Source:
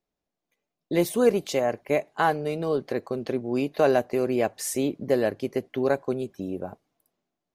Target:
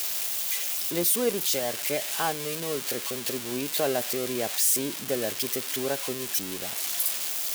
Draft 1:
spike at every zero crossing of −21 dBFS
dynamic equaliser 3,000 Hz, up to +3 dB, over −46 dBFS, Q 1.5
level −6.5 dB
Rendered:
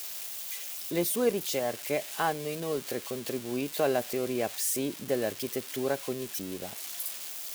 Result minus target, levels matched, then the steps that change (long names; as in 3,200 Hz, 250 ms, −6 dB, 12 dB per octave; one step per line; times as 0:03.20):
spike at every zero crossing: distortion −9 dB
change: spike at every zero crossing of −12 dBFS